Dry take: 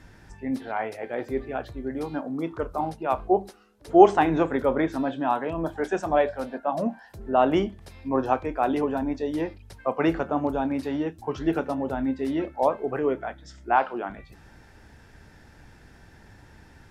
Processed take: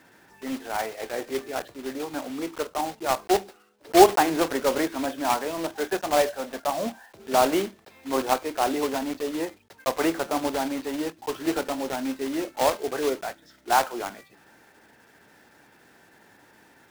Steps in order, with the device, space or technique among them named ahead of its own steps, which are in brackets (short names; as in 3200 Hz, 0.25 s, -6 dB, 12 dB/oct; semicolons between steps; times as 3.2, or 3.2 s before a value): early digital voice recorder (BPF 280–3800 Hz; block floating point 3-bit)